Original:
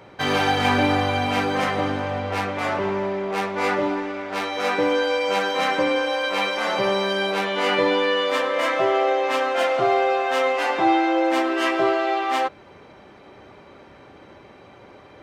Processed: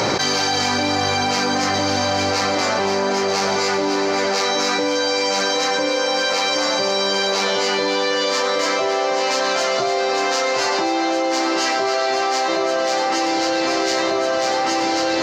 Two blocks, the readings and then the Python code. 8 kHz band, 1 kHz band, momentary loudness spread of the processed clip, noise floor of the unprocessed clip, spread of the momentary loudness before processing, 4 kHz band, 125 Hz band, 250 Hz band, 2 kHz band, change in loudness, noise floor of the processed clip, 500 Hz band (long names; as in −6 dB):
+17.0 dB, +2.5 dB, 1 LU, −47 dBFS, 6 LU, +8.5 dB, −1.0 dB, +2.0 dB, +2.5 dB, +3.0 dB, −20 dBFS, +2.5 dB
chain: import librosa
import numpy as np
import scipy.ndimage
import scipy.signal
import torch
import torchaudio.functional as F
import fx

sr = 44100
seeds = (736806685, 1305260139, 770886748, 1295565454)

p1 = fx.highpass(x, sr, hz=150.0, slope=6)
p2 = fx.band_shelf(p1, sr, hz=5500.0, db=16.0, octaves=1.0)
p3 = p2 + fx.echo_alternate(p2, sr, ms=772, hz=2000.0, feedback_pct=77, wet_db=-6.5, dry=0)
p4 = fx.env_flatten(p3, sr, amount_pct=100)
y = p4 * librosa.db_to_amplitude(-3.5)